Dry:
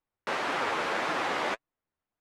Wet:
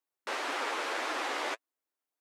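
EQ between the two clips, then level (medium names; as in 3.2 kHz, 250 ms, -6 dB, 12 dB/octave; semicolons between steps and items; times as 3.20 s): brick-wall FIR high-pass 240 Hz; treble shelf 4.2 kHz +9 dB; -5.0 dB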